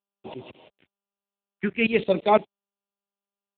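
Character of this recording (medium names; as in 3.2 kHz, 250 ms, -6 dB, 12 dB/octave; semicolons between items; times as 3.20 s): tremolo saw up 5.9 Hz, depth 95%; a quantiser's noise floor 10-bit, dither none; phasing stages 4, 0.57 Hz, lowest notch 600–1500 Hz; AMR-NB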